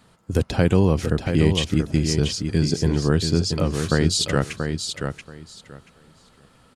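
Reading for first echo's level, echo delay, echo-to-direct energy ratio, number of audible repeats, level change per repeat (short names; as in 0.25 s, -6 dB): -6.5 dB, 0.682 s, -6.5 dB, 2, -15.0 dB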